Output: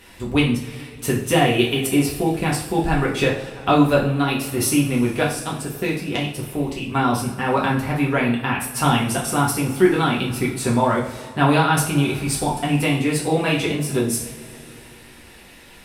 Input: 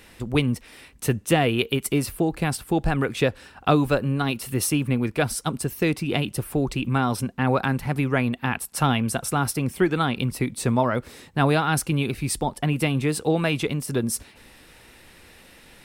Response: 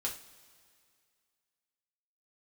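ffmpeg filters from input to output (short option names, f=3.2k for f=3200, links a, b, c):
-filter_complex "[0:a]asettb=1/sr,asplit=3[a][b][c];[a]atrim=end=5.234[d];[b]atrim=start=5.23:end=6.92,asetpts=PTS-STARTPTS,afade=t=in:d=0.004:c=qsin,afade=t=out:st=1.686:d=0.004:c=qsin,aeval=exprs='0.501*(cos(1*acos(clip(val(0)/0.501,-1,1)))-cos(1*PI/2))+0.0708*(cos(3*acos(clip(val(0)/0.501,-1,1)))-cos(3*PI/2))':c=same[e];[c]atrim=start=6.916[f];[d][e]acrossfade=d=0.004:c1=hsin:c2=qsin[g];[g][f]acrossfade=d=0.004:c1=qsin:c2=hsin[h];[1:a]atrim=start_sample=2205,asetrate=30870,aresample=44100[i];[h][i]afir=irnorm=-1:irlink=0"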